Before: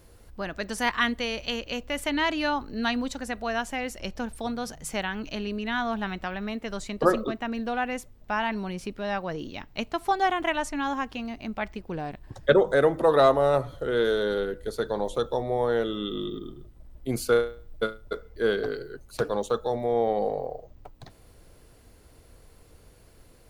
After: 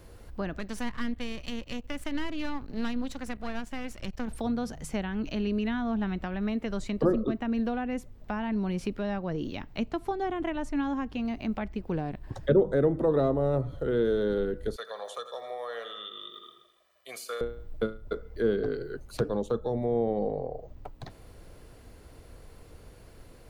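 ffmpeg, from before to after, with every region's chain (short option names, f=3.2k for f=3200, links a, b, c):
-filter_complex "[0:a]asettb=1/sr,asplit=3[a][b][c];[a]atrim=end=0.594[d];[b]atrim=start=0.59:end=4.28,asetpts=PTS-STARTPTS,afade=t=in:d=0.004:c=qsin,afade=t=out:st=3.686:d=0.004:c=qsin,aeval=exprs='if(lt(val(0),0),0.251*val(0),val(0))':c=same,equalizer=f=520:w=0.51:g=-5[e];[c]atrim=start=4.276[f];[d][e]acrossfade=d=0.004:c1=hsin:c2=qsin[g];[g][f]acrossfade=d=0.004:c1=qsin:c2=hsin,asettb=1/sr,asplit=3[h][i][j];[h]atrim=end=14.764[k];[i]atrim=start=14.76:end=17.41,asetpts=PTS-STARTPTS,afade=t=in:d=0.004:c=qsin,afade=t=out:st=2.646:d=0.004:c=qsin,highpass=1.2k,aecho=1:1:1.7:0.64,atrim=end_sample=116865,aecho=1:1:85|170|255|340|425|510:0.251|0.136|0.0732|0.0396|0.0214|0.0115,atrim=end_sample=116865[l];[j]atrim=start=17.406[m];[k][l]acrossfade=d=0.004:c1=hsin:c2=qsin[n];[n][m]acrossfade=d=0.004:c1=qsin:c2=hsin,acrossover=split=390[o][p];[p]acompressor=threshold=-41dB:ratio=4[q];[o][q]amix=inputs=2:normalize=0,highshelf=f=4.4k:g=-6.5,volume=4dB"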